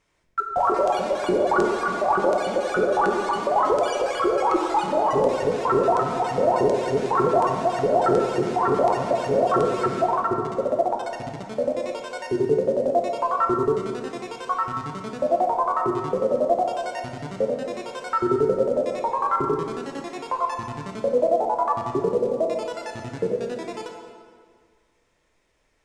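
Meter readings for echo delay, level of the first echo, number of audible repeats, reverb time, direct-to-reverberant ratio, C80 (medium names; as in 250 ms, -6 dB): no echo, no echo, no echo, 1.9 s, 1.5 dB, 5.5 dB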